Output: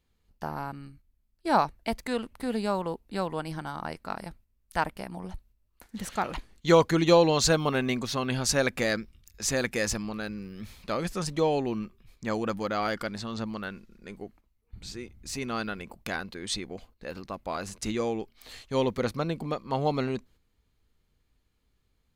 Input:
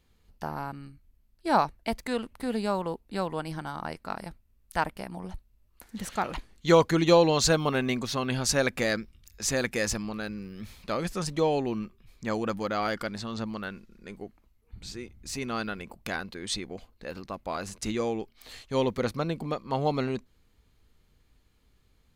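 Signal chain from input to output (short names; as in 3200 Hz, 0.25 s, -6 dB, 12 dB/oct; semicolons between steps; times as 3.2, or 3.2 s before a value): gate -54 dBFS, range -7 dB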